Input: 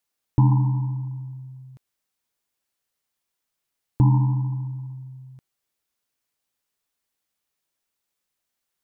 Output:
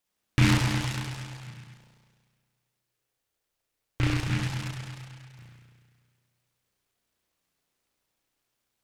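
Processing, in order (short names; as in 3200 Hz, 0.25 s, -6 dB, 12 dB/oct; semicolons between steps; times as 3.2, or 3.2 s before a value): in parallel at +3 dB: compressor, threshold -26 dBFS, peak gain reduction 12.5 dB; 1.47–4.28 on the sum: fixed phaser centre 490 Hz, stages 4; spring tank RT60 1.8 s, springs 33 ms, chirp 60 ms, DRR -7.5 dB; noise-modulated delay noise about 1900 Hz, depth 0.28 ms; gain -8.5 dB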